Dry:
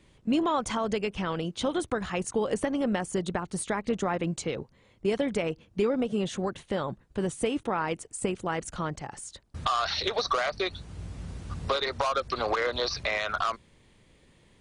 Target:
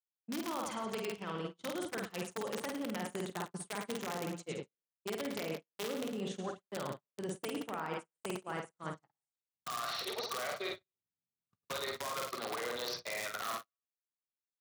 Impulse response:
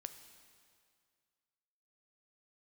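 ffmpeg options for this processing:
-af "aeval=exprs='(mod(7.5*val(0)+1,2)-1)/7.5':c=same,lowshelf=f=160:g=-3,aecho=1:1:50|107.5|173.6|249.7|337.1:0.631|0.398|0.251|0.158|0.1,agate=range=-55dB:threshold=-29dB:ratio=16:detection=peak,areverse,acompressor=threshold=-30dB:ratio=6,areverse,highpass=f=110:w=0.5412,highpass=f=110:w=1.3066,volume=-5.5dB"

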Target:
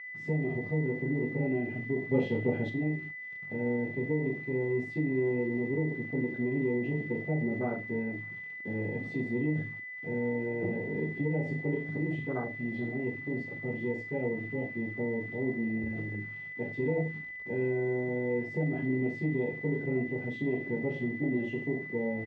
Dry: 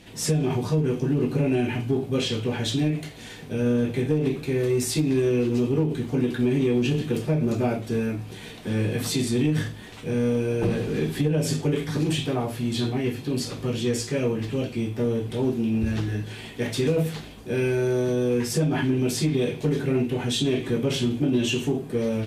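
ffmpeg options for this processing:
-filter_complex "[0:a]afwtdn=0.0501,asettb=1/sr,asplit=3[a][b][c];[a]atrim=end=2.114[d];[b]atrim=start=2.11:end=2.7,asetpts=PTS-STARTPTS,afade=t=in:d=0.004:c=qsin,afade=t=out:st=0.586:d=0.004:c=qsin,acontrast=57[e];[c]atrim=start=2.696[f];[d][e]acrossfade=d=0.004:c1=hsin:c2=qsin[g];[g][f]acrossfade=d=0.004:c1=qsin:c2=hsin,acrusher=bits=9:dc=4:mix=0:aa=0.000001,aeval=exprs='val(0)+0.0224*sin(2*PI*2000*n/s)':c=same,highpass=130,lowpass=2.7k,asplit=2[h][i];[i]adelay=39,volume=-12dB[j];[h][j]amix=inputs=2:normalize=0,volume=-7.5dB"

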